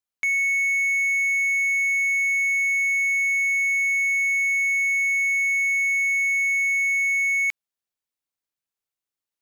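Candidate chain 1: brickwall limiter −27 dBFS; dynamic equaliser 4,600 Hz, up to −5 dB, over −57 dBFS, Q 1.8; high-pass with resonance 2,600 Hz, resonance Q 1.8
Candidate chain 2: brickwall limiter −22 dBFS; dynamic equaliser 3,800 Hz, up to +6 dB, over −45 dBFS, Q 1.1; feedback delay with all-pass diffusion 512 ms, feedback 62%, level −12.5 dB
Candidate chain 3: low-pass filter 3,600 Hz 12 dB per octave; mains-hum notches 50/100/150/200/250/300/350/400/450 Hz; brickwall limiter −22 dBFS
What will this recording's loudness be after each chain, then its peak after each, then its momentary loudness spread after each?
−27.5, −22.0, −23.0 LKFS; −25.5, −19.5, −22.0 dBFS; 0, 14, 0 LU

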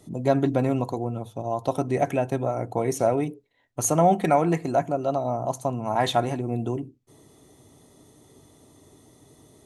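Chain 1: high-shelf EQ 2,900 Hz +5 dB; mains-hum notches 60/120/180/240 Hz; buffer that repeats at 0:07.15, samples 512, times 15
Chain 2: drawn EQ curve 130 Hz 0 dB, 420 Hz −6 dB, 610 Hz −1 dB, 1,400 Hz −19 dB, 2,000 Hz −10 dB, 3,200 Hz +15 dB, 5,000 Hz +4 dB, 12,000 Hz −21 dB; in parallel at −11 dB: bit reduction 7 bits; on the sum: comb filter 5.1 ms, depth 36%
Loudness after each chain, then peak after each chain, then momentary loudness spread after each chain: −25.0, −25.0 LKFS; −7.5, −3.0 dBFS; 11, 12 LU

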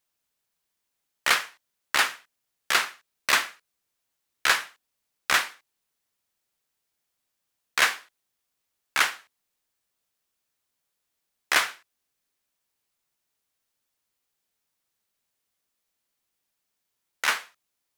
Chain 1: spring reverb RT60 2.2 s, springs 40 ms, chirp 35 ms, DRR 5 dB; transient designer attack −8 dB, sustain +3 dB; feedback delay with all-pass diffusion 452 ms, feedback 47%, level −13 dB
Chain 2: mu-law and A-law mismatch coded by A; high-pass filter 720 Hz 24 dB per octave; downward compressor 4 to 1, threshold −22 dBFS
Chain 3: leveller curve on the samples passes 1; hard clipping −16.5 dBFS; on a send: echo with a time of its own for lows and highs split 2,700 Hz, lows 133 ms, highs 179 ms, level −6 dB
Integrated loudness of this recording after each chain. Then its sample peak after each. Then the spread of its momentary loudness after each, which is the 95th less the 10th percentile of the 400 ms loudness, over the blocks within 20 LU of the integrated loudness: −28.0, −29.5, −25.0 LKFS; −7.5, −7.0, −13.5 dBFS; 18, 12, 17 LU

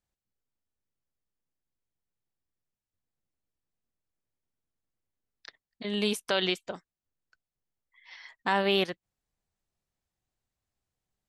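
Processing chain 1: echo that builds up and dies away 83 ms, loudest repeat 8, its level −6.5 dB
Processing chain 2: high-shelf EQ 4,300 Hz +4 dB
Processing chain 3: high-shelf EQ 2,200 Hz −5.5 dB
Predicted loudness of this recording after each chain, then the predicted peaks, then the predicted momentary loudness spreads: −27.5, −28.5, −30.5 LKFS; −9.5, −11.0, −13.0 dBFS; 8, 20, 17 LU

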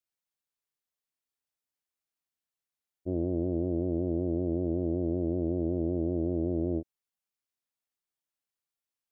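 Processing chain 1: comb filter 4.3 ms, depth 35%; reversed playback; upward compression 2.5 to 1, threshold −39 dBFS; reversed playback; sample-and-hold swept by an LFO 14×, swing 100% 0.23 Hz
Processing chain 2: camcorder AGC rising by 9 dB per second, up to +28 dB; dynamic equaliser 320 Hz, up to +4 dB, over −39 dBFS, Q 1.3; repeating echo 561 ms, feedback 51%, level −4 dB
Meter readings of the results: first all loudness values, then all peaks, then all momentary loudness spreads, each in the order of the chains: −31.5, −26.5 LKFS; −20.0, −11.5 dBFS; 3, 16 LU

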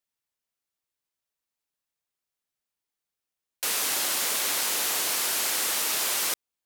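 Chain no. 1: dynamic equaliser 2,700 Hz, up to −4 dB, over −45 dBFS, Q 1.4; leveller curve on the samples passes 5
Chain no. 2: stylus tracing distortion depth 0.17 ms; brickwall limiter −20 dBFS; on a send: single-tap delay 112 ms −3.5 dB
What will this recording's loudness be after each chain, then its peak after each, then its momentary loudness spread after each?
−15.5, −27.0 LKFS; −15.0, −16.0 dBFS; 2, 3 LU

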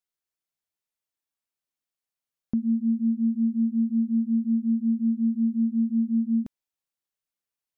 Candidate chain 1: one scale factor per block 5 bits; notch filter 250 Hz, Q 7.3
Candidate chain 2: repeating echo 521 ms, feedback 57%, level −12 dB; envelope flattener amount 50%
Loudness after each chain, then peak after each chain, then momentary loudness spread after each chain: −27.0, −23.5 LKFS; −18.5, −16.0 dBFS; 3, 7 LU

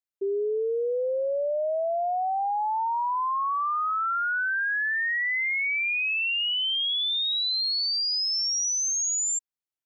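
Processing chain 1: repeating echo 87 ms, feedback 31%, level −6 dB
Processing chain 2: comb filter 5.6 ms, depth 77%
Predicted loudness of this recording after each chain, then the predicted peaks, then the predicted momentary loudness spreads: −24.0, −23.0 LKFS; −19.0, −18.5 dBFS; 4, 7 LU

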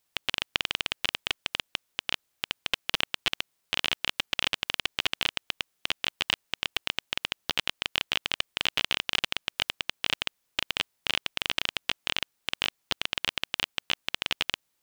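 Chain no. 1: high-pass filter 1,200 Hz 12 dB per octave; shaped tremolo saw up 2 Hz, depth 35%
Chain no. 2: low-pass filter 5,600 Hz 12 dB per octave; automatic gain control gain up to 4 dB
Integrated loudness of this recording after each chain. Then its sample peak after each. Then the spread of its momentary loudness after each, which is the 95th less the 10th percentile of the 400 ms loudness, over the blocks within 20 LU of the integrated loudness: −32.0, −27.5 LKFS; −6.5, −2.0 dBFS; 5, 5 LU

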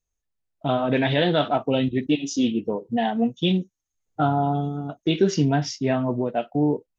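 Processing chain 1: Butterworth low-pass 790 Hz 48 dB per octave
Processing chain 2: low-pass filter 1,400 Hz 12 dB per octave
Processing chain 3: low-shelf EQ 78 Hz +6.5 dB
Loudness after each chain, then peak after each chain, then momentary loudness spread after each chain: −24.0, −24.0, −23.0 LKFS; −8.5, −8.5, −8.0 dBFS; 5, 5, 6 LU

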